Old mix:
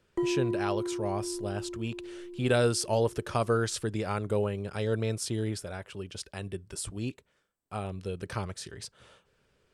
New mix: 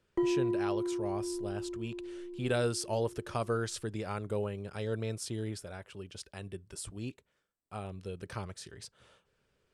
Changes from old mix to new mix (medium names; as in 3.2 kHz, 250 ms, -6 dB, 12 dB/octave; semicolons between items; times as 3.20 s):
speech -5.5 dB; background: add distance through air 82 m